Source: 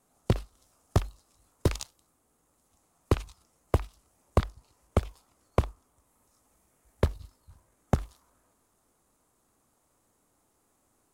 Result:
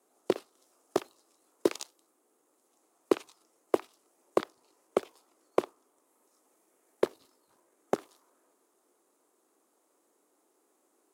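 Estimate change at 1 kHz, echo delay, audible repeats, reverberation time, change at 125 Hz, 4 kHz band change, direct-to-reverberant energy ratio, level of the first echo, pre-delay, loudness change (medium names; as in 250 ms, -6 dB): -1.0 dB, no echo, no echo, no reverb, -26.0 dB, -2.0 dB, no reverb, no echo, no reverb, -2.0 dB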